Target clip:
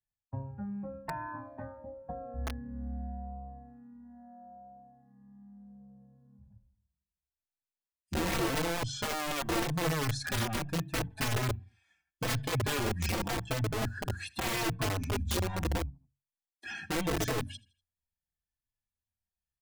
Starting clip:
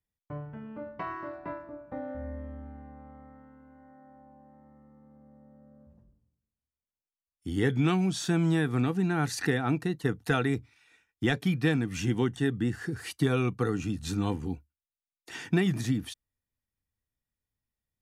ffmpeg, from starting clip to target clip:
-filter_complex "[0:a]lowshelf=f=120:g=3.5,aeval=exprs='0.0794*(abs(mod(val(0)/0.0794+3,4)-2)-1)':c=same,bandreject=f=50:t=h:w=6,bandreject=f=100:t=h:w=6,bandreject=f=150:t=h:w=6,bandreject=f=200:t=h:w=6,bandreject=f=250:t=h:w=6,bandreject=f=300:t=h:w=6,bandreject=f=350:t=h:w=6,bandreject=f=400:t=h:w=6,bandreject=f=450:t=h:w=6,bandreject=f=500:t=h:w=6,afftdn=nr=13:nf=-44,acrossover=split=130[a][b];[b]acompressor=threshold=-43dB:ratio=3[c];[a][c]amix=inputs=2:normalize=0,aecho=1:1:74|148|222:0.075|0.03|0.012,asetrate=40517,aresample=44100,aecho=1:1:1.2:0.64,aeval=exprs='(mod(26.6*val(0)+1,2)-1)/26.6':c=same,asplit=2[d][e];[e]adelay=4.1,afreqshift=-0.81[f];[d][f]amix=inputs=2:normalize=1,volume=5.5dB"

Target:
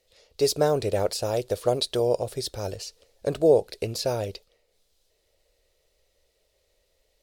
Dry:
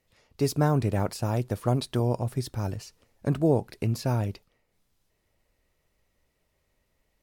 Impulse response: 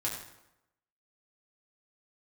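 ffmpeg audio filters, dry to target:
-af "equalizer=f=125:t=o:w=1:g=-10,equalizer=f=250:t=o:w=1:g=-11,equalizer=f=500:t=o:w=1:g=11,equalizer=f=1k:t=o:w=1:g=-7,equalizer=f=2k:t=o:w=1:g=-3,equalizer=f=4k:t=o:w=1:g=8,equalizer=f=8k:t=o:w=1:g=3,volume=2.5dB"

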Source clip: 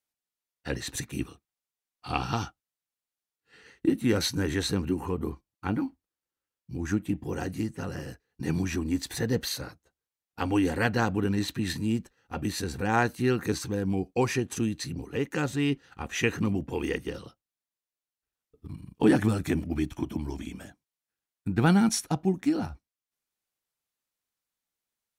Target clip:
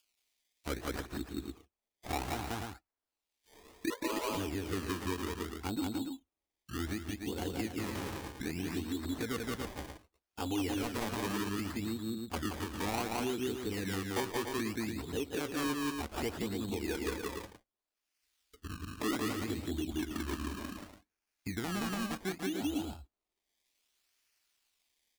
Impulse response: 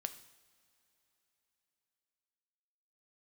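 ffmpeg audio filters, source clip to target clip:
-filter_complex "[0:a]asettb=1/sr,asplit=3[a][b][c];[a]atrim=end=3.904[d];[b]atrim=start=3.9:end=4.31,asetpts=PTS-STARTPTS,afade=t=in:d=0.004:c=qsin,afade=t=out:st=0.406:d=0.004:c=qsin,aeval=exprs='val(0)*sin(2*PI*750*n/s)':c=same[e];[c]atrim=start=4.306[f];[d][e]acrossfade=d=0.004:c1=hsin:c2=qsin[g];[g][f]acrossfade=d=0.004:c1=qsin:c2=hsin,tiltshelf=f=1.1k:g=6,acrusher=samples=22:mix=1:aa=0.000001:lfo=1:lforange=22:lforate=0.65,bandreject=f=510:w=12,aecho=1:1:174.9|285.7:0.708|0.355,asplit=2[h][i];[i]acompressor=threshold=-29dB:ratio=6,volume=-1dB[j];[h][j]amix=inputs=2:normalize=0,alimiter=limit=-15.5dB:level=0:latency=1:release=284,equalizer=f=140:t=o:w=1:g=-14.5,acrossover=split=2500[k][l];[l]acompressor=mode=upward:threshold=-48dB:ratio=2.5[m];[k][m]amix=inputs=2:normalize=0,volume=-7.5dB"

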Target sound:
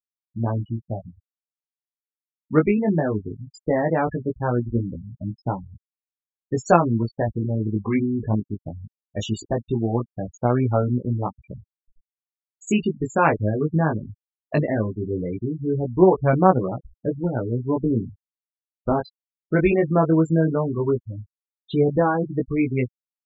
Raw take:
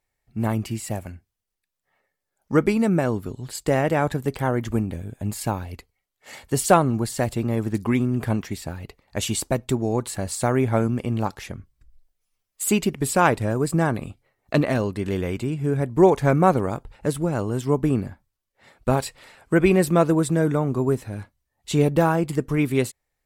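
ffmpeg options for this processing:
-af "aresample=16000,aresample=44100,afftfilt=real='re*gte(hypot(re,im),0.0891)':imag='im*gte(hypot(re,im),0.0891)':win_size=1024:overlap=0.75,flanger=delay=16:depth=3.3:speed=0.18,volume=3dB"

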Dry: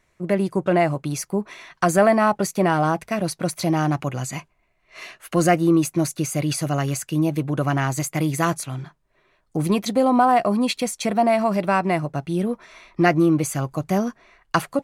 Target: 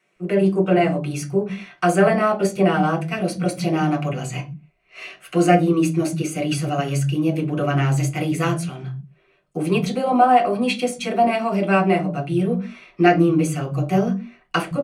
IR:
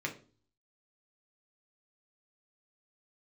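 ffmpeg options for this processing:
-filter_complex "[0:a]acrossover=split=170[a][b];[a]adelay=160[c];[c][b]amix=inputs=2:normalize=0[d];[1:a]atrim=start_sample=2205,afade=t=out:st=0.23:d=0.01,atrim=end_sample=10584,asetrate=57330,aresample=44100[e];[d][e]afir=irnorm=-1:irlink=0"

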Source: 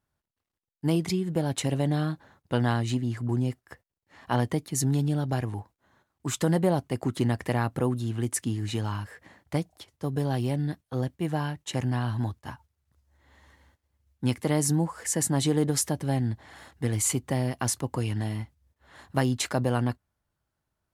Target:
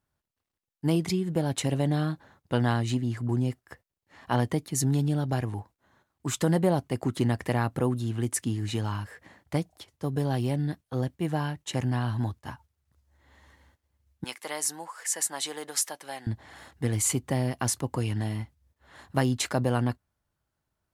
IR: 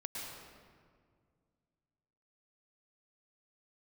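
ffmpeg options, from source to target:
-filter_complex "[0:a]asettb=1/sr,asplit=3[a][b][c];[a]atrim=end=14.244[d];[b]atrim=start=14.24:end=16.27,asetpts=PTS-STARTPTS,afade=t=in:d=0.004:c=qsin,afade=t=out:st=2.026:d=0.004:c=qsin,highpass=850[e];[c]atrim=start=16.266[f];[d][e]acrossfade=d=0.004:c1=hsin:c2=qsin[g];[g][f]acrossfade=d=0.004:c1=qsin:c2=hsin"

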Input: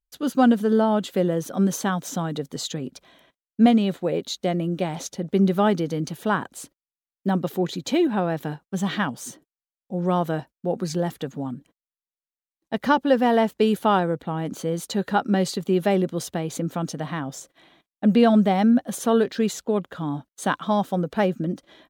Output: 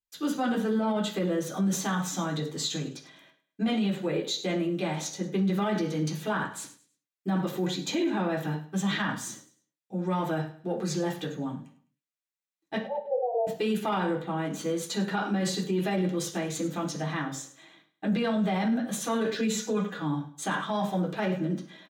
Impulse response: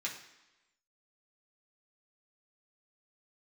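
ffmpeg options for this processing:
-filter_complex "[0:a]acontrast=33,asettb=1/sr,asplit=3[a][b][c];[a]atrim=end=12.784[d];[b]atrim=start=12.78:end=13.47,asetpts=PTS-STARTPTS,afade=t=in:d=0.004:c=qsin,afade=t=out:st=0.686:d=0.004:c=qsin,asuperpass=centerf=590:order=12:qfactor=1.6[e];[c]atrim=start=13.466[f];[d][e]acrossfade=d=0.004:c1=hsin:c2=qsin[g];[g][f]acrossfade=d=0.004:c1=qsin:c2=hsin,asettb=1/sr,asplit=3[h][i][j];[h]atrim=end=19.364[k];[i]atrim=start=19.36:end=19.96,asetpts=PTS-STARTPTS,afade=t=in:d=0.004:c=qsin,afade=t=out:st=0.596:d=0.004:c=qsin,aecho=1:1:4.1:0.83,atrim=end_sample=26460[l];[j]atrim=start=19.956[m];[k][l]acrossfade=d=0.004:c1=hsin:c2=qsin[n];[n][m]acrossfade=d=0.004:c1=qsin:c2=hsin,aecho=1:1:104|208|312:0.158|0.0491|0.0152[o];[1:a]atrim=start_sample=2205,atrim=end_sample=4410[p];[o][p]afir=irnorm=-1:irlink=0,alimiter=limit=-13dB:level=0:latency=1:release=17,volume=-7dB"

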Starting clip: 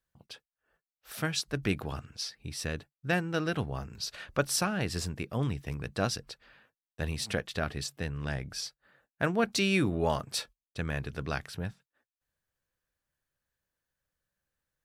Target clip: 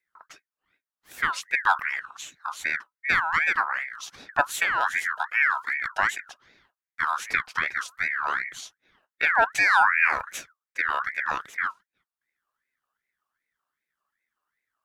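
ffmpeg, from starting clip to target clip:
-filter_complex "[0:a]asplit=3[a][b][c];[a]afade=t=out:st=5.17:d=0.02[d];[b]afreqshift=34,afade=t=in:st=5.17:d=0.02,afade=t=out:st=6.17:d=0.02[e];[c]afade=t=in:st=6.17:d=0.02[f];[d][e][f]amix=inputs=3:normalize=0,lowshelf=f=590:t=q:w=1.5:g=10,aeval=exprs='val(0)*sin(2*PI*1600*n/s+1600*0.3/2.6*sin(2*PI*2.6*n/s))':c=same"

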